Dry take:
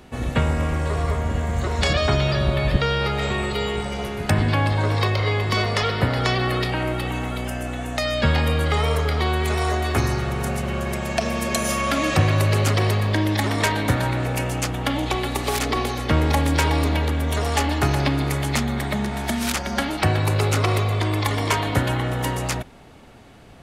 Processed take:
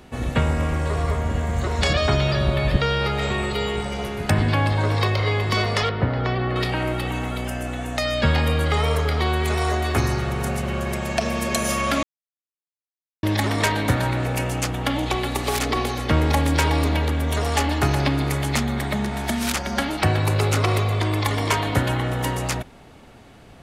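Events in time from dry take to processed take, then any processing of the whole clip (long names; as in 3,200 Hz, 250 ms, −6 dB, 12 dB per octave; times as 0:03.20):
0:05.89–0:06.56: head-to-tape spacing loss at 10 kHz 29 dB
0:12.03–0:13.23: silence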